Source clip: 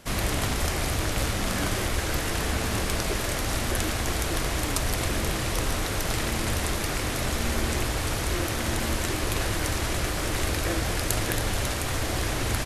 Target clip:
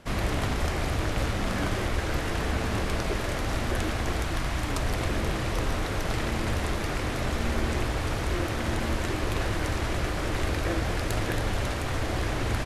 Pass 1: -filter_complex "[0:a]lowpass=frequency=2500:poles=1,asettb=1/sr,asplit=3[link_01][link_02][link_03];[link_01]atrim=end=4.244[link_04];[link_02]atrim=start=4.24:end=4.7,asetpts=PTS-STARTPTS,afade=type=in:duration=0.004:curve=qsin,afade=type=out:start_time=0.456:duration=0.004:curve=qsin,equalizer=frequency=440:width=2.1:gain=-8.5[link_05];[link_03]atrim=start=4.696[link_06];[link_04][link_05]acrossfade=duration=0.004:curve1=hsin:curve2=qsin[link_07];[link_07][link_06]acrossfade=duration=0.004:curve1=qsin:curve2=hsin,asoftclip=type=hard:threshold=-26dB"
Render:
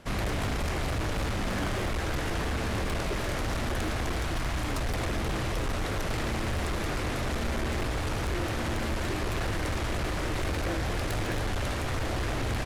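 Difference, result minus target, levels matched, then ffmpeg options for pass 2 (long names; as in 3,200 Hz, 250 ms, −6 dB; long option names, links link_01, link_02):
hard clipping: distortion +32 dB
-filter_complex "[0:a]lowpass=frequency=2500:poles=1,asettb=1/sr,asplit=3[link_01][link_02][link_03];[link_01]atrim=end=4.244[link_04];[link_02]atrim=start=4.24:end=4.7,asetpts=PTS-STARTPTS,afade=type=in:duration=0.004:curve=qsin,afade=type=out:start_time=0.456:duration=0.004:curve=qsin,equalizer=frequency=440:width=2.1:gain=-8.5[link_05];[link_03]atrim=start=4.696[link_06];[link_04][link_05]acrossfade=duration=0.004:curve1=hsin:curve2=qsin[link_07];[link_07][link_06]acrossfade=duration=0.004:curve1=qsin:curve2=hsin,asoftclip=type=hard:threshold=-16dB"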